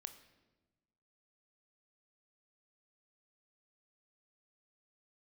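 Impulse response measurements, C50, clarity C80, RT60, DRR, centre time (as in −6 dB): 12.0 dB, 14.0 dB, 1.2 s, 8.5 dB, 10 ms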